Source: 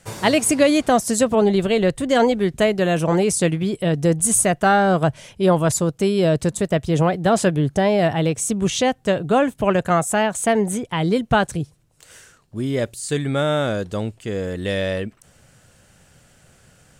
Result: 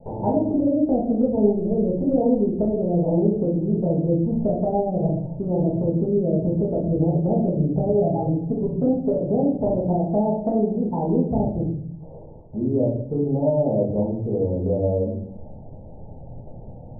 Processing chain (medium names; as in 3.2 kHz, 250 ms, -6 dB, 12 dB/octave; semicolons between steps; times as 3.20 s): steep low-pass 920 Hz 96 dB/octave; low-pass that closes with the level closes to 440 Hz, closed at -15 dBFS; 7.88–9.16 s: comb 7.2 ms, depth 74%; compression 2:1, threshold -44 dBFS, peak gain reduction 16 dB; simulated room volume 140 m³, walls mixed, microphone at 1.5 m; trim +7 dB